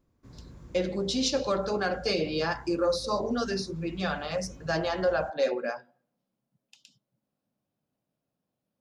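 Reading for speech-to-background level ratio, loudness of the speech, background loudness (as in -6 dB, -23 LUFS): 19.5 dB, -29.5 LUFS, -49.0 LUFS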